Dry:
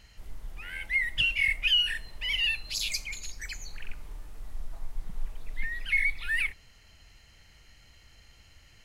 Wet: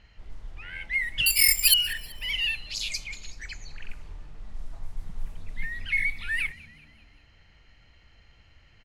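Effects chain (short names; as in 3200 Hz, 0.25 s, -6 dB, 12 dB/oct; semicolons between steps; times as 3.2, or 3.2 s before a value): 1.26–1.74 careless resampling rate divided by 6×, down none, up zero stuff; low-pass opened by the level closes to 3000 Hz, open at -24 dBFS; frequency-shifting echo 0.191 s, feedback 50%, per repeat +69 Hz, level -21.5 dB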